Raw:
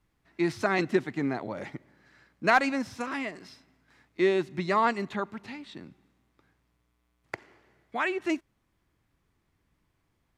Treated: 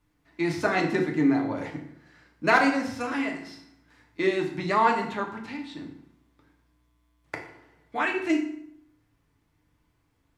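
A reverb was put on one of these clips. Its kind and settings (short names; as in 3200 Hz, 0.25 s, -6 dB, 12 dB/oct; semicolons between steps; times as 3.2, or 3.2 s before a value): FDN reverb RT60 0.7 s, low-frequency decay 1.2×, high-frequency decay 0.8×, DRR 0.5 dB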